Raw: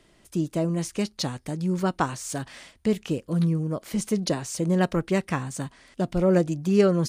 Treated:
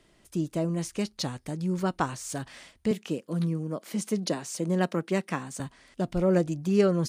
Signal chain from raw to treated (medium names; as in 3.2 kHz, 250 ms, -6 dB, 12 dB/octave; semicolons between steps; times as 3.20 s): 2.91–5.60 s: high-pass 160 Hz 24 dB/octave; trim -3 dB